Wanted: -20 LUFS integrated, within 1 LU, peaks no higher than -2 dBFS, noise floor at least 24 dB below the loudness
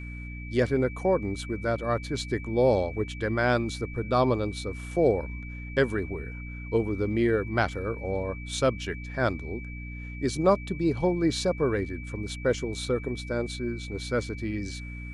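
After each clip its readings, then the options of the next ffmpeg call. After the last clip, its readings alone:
hum 60 Hz; highest harmonic 300 Hz; hum level -36 dBFS; steady tone 2.3 kHz; tone level -43 dBFS; loudness -28.0 LUFS; peak level -9.5 dBFS; loudness target -20.0 LUFS
-> -af "bandreject=f=60:t=h:w=4,bandreject=f=120:t=h:w=4,bandreject=f=180:t=h:w=4,bandreject=f=240:t=h:w=4,bandreject=f=300:t=h:w=4"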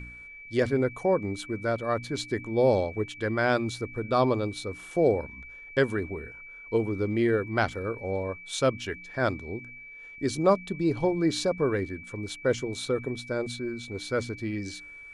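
hum not found; steady tone 2.3 kHz; tone level -43 dBFS
-> -af "bandreject=f=2300:w=30"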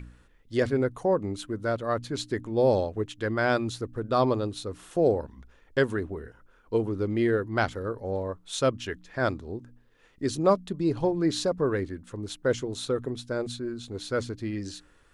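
steady tone not found; loudness -28.5 LUFS; peak level -9.5 dBFS; loudness target -20.0 LUFS
-> -af "volume=2.66,alimiter=limit=0.794:level=0:latency=1"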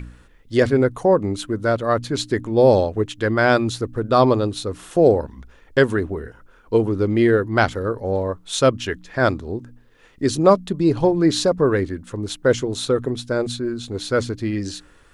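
loudness -20.0 LUFS; peak level -2.0 dBFS; noise floor -51 dBFS

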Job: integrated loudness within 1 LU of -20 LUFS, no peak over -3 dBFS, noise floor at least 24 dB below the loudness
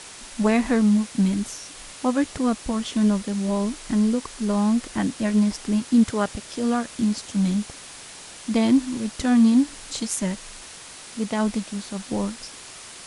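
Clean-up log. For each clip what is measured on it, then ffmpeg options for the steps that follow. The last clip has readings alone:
noise floor -42 dBFS; noise floor target -47 dBFS; loudness -23.0 LUFS; peak level -6.5 dBFS; loudness target -20.0 LUFS
-> -af "afftdn=nr=6:nf=-42"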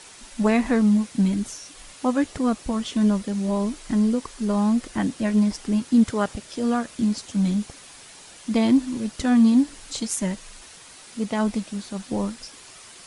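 noise floor -46 dBFS; noise floor target -48 dBFS
-> -af "afftdn=nr=6:nf=-46"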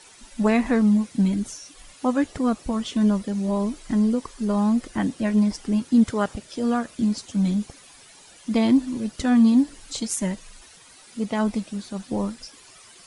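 noise floor -50 dBFS; loudness -23.5 LUFS; peak level -7.0 dBFS; loudness target -20.0 LUFS
-> -af "volume=1.5"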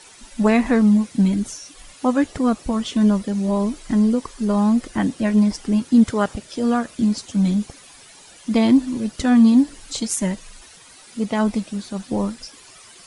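loudness -20.0 LUFS; peak level -3.5 dBFS; noise floor -46 dBFS

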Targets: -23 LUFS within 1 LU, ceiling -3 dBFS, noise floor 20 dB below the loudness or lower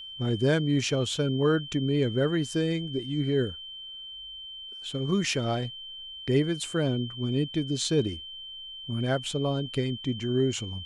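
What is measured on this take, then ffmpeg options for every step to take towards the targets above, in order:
steady tone 3.1 kHz; tone level -39 dBFS; loudness -28.0 LUFS; peak level -12.5 dBFS; loudness target -23.0 LUFS
-> -af "bandreject=f=3100:w=30"
-af "volume=1.78"

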